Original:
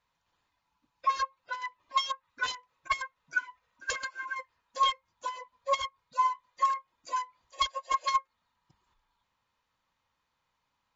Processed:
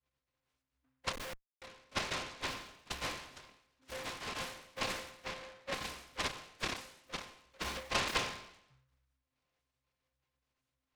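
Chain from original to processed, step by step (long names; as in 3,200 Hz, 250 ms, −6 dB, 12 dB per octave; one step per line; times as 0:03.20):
resonances in every octave C, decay 0.76 s
0:01.13–0:01.62: comparator with hysteresis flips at −54.5 dBFS
short delay modulated by noise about 1,300 Hz, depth 0.23 ms
level +13 dB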